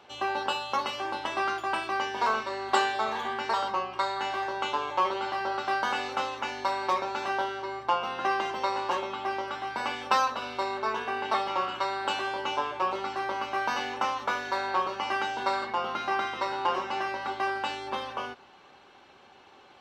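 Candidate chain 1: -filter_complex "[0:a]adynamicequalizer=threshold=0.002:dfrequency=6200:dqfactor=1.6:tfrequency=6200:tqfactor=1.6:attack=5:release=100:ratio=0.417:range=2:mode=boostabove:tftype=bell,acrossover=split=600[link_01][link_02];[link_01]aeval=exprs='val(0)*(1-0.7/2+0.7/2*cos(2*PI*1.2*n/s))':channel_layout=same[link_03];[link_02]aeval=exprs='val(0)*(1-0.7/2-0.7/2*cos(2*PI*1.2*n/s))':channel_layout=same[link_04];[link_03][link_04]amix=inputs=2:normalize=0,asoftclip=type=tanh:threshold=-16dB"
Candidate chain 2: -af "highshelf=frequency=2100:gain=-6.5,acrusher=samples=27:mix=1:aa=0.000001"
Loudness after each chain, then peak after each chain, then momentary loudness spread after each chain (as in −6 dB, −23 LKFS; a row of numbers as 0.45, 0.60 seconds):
−33.5, −31.5 LKFS; −16.5, −12.0 dBFS; 5, 5 LU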